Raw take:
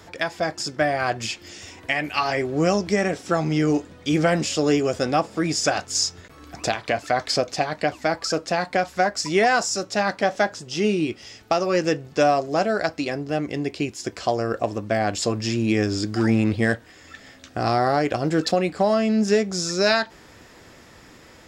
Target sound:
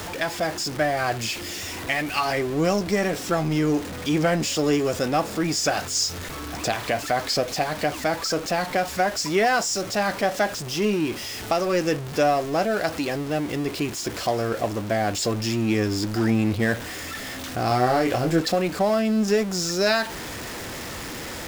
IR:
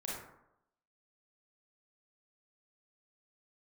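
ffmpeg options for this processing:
-filter_complex "[0:a]aeval=exprs='val(0)+0.5*0.0501*sgn(val(0))':c=same,asettb=1/sr,asplit=3[a][b][c];[a]atrim=end=17.684[d];[b]atrim=start=17.68:end=18.4,asetpts=PTS-STARTPTS,afade=t=in:d=0.004:c=qsin,afade=t=out:st=0.716:d=0.004:c=qsin,asplit=2[e][f];[f]adelay=24,volume=-4.5dB[g];[e][g]amix=inputs=2:normalize=0,atrim=end_sample=31752[h];[c]atrim=start=18.396[i];[d][h]acrossfade=d=0.004:c1=hsin:c2=qsin[j];[j][i]acrossfade=d=0.004:c1=qsin:c2=hsin,volume=-3dB"

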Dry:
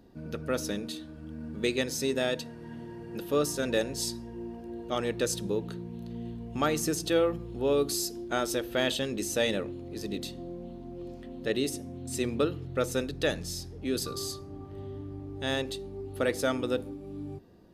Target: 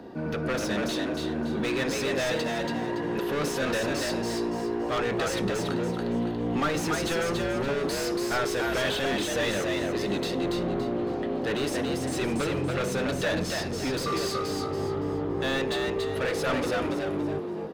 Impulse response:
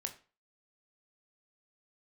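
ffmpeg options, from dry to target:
-filter_complex "[0:a]asplit=2[a][b];[b]highpass=f=720:p=1,volume=29dB,asoftclip=type=tanh:threshold=-13.5dB[c];[a][c]amix=inputs=2:normalize=0,lowpass=f=1k:p=1,volume=-6dB,asettb=1/sr,asplit=3[d][e][f];[d]atrim=end=10.434[g];[e]atrim=start=10.43:end=10.83,asetpts=PTS-STARTPTS,afade=t=in:d=0.004:c=qsin,afade=t=out:st=0.396:d=0.004:c=qsin,lowshelf=f=350:g=8[h];[f]atrim=start=10.826[i];[g][h]acrossfade=d=0.004:c1=hsin:c2=qsin[j];[j][i]acrossfade=d=0.004:c1=qsin:c2=hsin,acrossover=split=170|1100|3300[k][l][m][n];[l]asoftclip=type=tanh:threshold=-29.5dB[o];[k][o][m][n]amix=inputs=4:normalize=0,asplit=5[p][q][r][s][t];[q]adelay=283,afreqshift=61,volume=-3.5dB[u];[r]adelay=566,afreqshift=122,volume=-13.1dB[v];[s]adelay=849,afreqshift=183,volume=-22.8dB[w];[t]adelay=1132,afreqshift=244,volume=-32.4dB[x];[p][u][v][w][x]amix=inputs=5:normalize=0"

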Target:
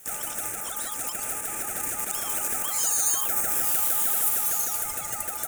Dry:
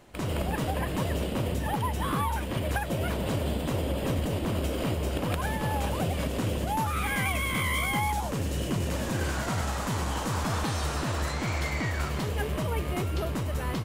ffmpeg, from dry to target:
-af "highpass=f=59:w=0.5412,highpass=f=59:w=1.3066,aeval=exprs='val(0)*sin(2*PI*410*n/s)':c=same,alimiter=level_in=1.5dB:limit=-24dB:level=0:latency=1:release=228,volume=-1.5dB,asetrate=111573,aresample=44100,aexciter=amount=13.1:drive=6.5:freq=6.7k,dynaudnorm=f=580:g=9:m=11.5dB,volume=-3dB"

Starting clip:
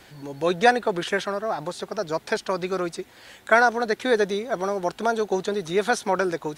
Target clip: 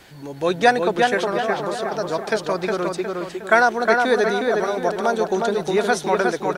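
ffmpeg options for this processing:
-filter_complex "[0:a]asplit=2[a][b];[b]adelay=361,lowpass=f=3.4k:p=1,volume=-3dB,asplit=2[c][d];[d]adelay=361,lowpass=f=3.4k:p=1,volume=0.45,asplit=2[e][f];[f]adelay=361,lowpass=f=3.4k:p=1,volume=0.45,asplit=2[g][h];[h]adelay=361,lowpass=f=3.4k:p=1,volume=0.45,asplit=2[i][j];[j]adelay=361,lowpass=f=3.4k:p=1,volume=0.45,asplit=2[k][l];[l]adelay=361,lowpass=f=3.4k:p=1,volume=0.45[m];[a][c][e][g][i][k][m]amix=inputs=7:normalize=0,volume=2dB"

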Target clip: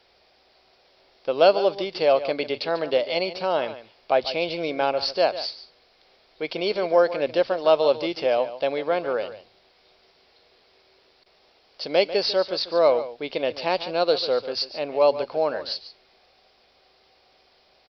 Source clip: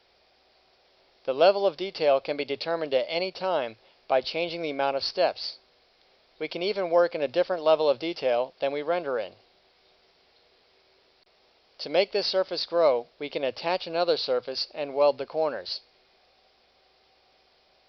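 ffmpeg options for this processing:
-af "aecho=1:1:144:0.211,volume=3dB"

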